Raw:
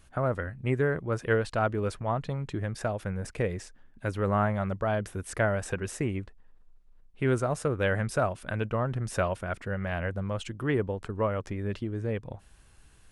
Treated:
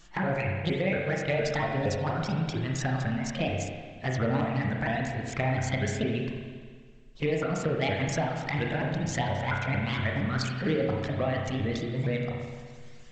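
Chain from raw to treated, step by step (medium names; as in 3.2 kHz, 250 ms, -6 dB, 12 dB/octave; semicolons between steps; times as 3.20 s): sawtooth pitch modulation +6.5 st, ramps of 232 ms; hum notches 60/120 Hz; reverb removal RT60 0.71 s; treble shelf 3.4 kHz +10.5 dB; compression 6:1, threshold -29 dBFS, peak gain reduction 9.5 dB; saturation -19.5 dBFS, distortion -27 dB; touch-sensitive flanger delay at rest 6.7 ms, full sweep at -28.5 dBFS; spring tank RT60 1.7 s, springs 31/42 ms, chirp 55 ms, DRR -0.5 dB; trim +6 dB; G.722 64 kbps 16 kHz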